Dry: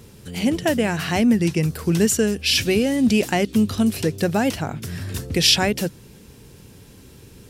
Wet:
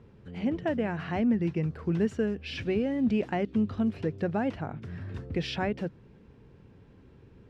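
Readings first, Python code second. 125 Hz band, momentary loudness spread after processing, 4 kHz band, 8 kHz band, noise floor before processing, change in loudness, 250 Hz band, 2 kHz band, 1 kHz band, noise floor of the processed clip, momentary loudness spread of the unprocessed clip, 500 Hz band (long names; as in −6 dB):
−8.5 dB, 11 LU, −21.0 dB, below −30 dB, −46 dBFS, −10.0 dB, −8.5 dB, −12.5 dB, −8.5 dB, −55 dBFS, 11 LU, −8.5 dB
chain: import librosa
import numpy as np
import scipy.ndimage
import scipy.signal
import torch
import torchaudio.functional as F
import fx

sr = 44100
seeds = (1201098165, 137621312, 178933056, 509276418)

y = scipy.signal.sosfilt(scipy.signal.butter(2, 1800.0, 'lowpass', fs=sr, output='sos'), x)
y = y * librosa.db_to_amplitude(-8.5)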